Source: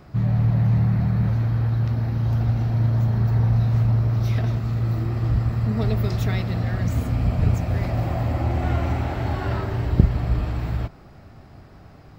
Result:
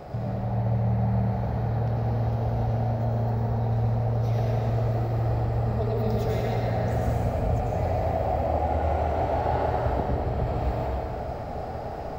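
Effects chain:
flat-topped bell 610 Hz +11.5 dB 1.2 octaves
downward compressor 6 to 1, threshold −32 dBFS, peak gain reduction 22.5 dB
dense smooth reverb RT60 2.9 s, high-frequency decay 0.6×, pre-delay 80 ms, DRR −5 dB
level +2.5 dB

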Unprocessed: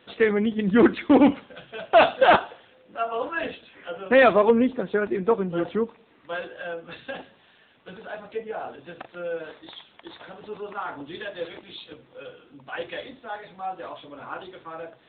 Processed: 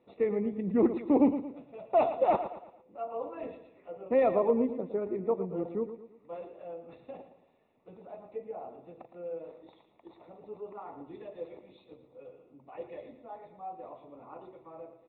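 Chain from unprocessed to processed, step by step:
moving average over 28 samples
low-shelf EQ 250 Hz −6 dB
on a send: repeating echo 113 ms, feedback 41%, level −11 dB
on the sum: level −5 dB

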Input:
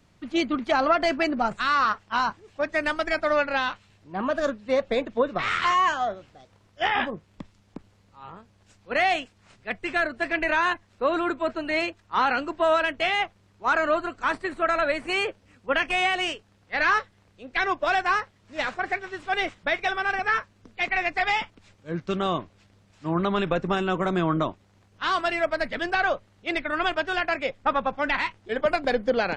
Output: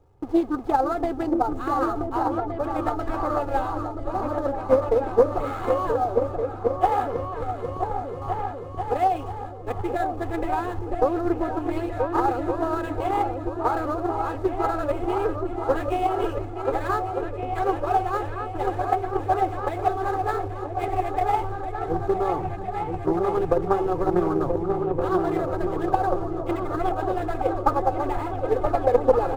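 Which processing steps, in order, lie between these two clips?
converter with a step at zero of −31.5 dBFS
comb filter 2.4 ms, depth 76%
noise gate with hold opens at −27 dBFS
in parallel at −3 dB: sample-rate reduction 5,500 Hz, jitter 20%
on the sum: drawn EQ curve 130 Hz 0 dB, 190 Hz −5 dB, 650 Hz 0 dB, 1,200 Hz −7 dB, 1,800 Hz −19 dB
on a send: echo whose low-pass opens from repeat to repeat 490 ms, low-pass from 200 Hz, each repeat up 2 octaves, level 0 dB
on the sum: transient designer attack +7 dB, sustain +2 dB
highs frequency-modulated by the lows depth 0.25 ms
level −5.5 dB

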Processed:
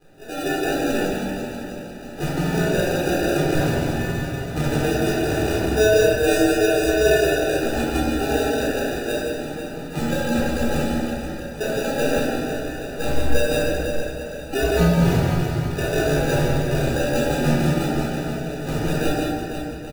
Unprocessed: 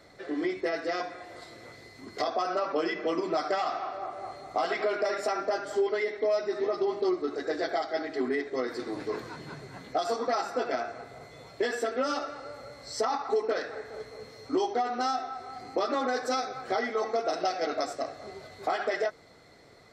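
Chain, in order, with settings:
partials spread apart or drawn together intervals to 119%
Butterworth high-pass 150 Hz 48 dB per octave
delay that swaps between a low-pass and a high-pass 164 ms, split 1,300 Hz, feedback 75%, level −2.5 dB
decimation without filtering 41×
double-tracking delay 17 ms −13.5 dB
rectangular room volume 840 cubic metres, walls mixed, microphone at 3.9 metres

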